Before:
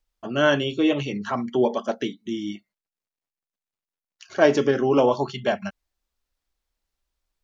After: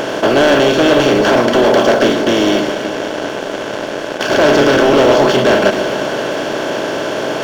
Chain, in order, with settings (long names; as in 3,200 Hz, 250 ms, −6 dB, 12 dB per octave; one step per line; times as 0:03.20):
compressor on every frequency bin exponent 0.2
dynamic equaliser 4,600 Hz, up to +7 dB, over −44 dBFS, Q 2.2
leveller curve on the samples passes 3
on a send: delay that swaps between a low-pass and a high-pass 131 ms, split 1,300 Hz, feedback 78%, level −9 dB
on the sum: level −6 dB